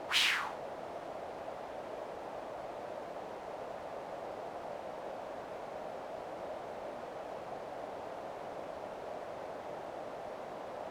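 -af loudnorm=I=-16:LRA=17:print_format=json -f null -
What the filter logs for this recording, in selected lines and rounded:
"input_i" : "-41.6",
"input_tp" : "-15.5",
"input_lra" : "7.3",
"input_thresh" : "-51.6",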